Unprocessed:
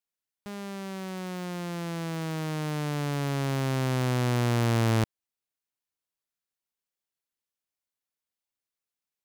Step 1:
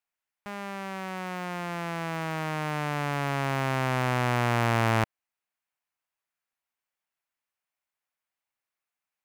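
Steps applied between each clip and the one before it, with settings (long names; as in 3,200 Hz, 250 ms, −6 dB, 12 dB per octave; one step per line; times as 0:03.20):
flat-topped bell 1,300 Hz +9 dB 2.4 octaves
level −2.5 dB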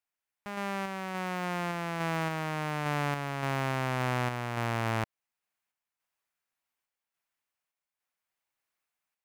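downward compressor, threshold −27 dBFS, peak gain reduction 8.5 dB
sample-and-hold tremolo
level +3 dB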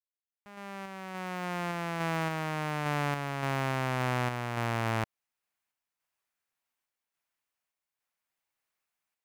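fade in at the beginning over 1.81 s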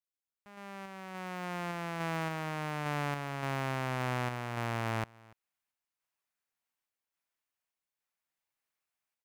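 single-tap delay 289 ms −24 dB
level −3.5 dB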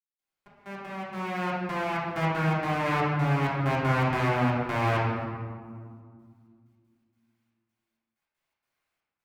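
gate pattern "..xxx..x.xx.xxxx" 160 BPM −24 dB
convolution reverb RT60 2.1 s, pre-delay 3 ms, DRR −10 dB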